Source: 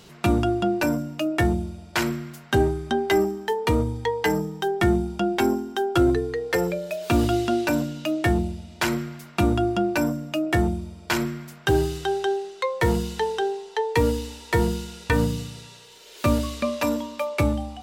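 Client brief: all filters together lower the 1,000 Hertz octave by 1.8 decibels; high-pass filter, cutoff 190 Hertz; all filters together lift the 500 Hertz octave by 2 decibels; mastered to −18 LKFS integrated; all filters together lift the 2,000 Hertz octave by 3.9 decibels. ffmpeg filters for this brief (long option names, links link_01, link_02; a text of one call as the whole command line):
ffmpeg -i in.wav -af "highpass=190,equalizer=frequency=500:width_type=o:gain=4,equalizer=frequency=1000:width_type=o:gain=-6,equalizer=frequency=2000:width_type=o:gain=6.5,volume=5.5dB" out.wav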